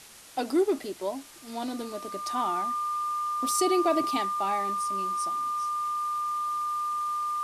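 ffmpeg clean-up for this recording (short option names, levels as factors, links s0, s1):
-af "bandreject=f=1200:w=30,afwtdn=0.004"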